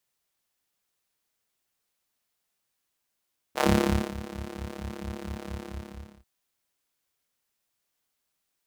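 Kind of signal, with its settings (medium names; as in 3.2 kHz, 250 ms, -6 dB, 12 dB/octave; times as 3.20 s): synth patch with filter wobble C#2, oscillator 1 square, sub -2.5 dB, filter highpass, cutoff 100 Hz, Q 1.6, filter envelope 2 oct, attack 49 ms, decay 0.53 s, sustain -19 dB, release 0.69 s, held 2.00 s, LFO 4.4 Hz, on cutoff 1 oct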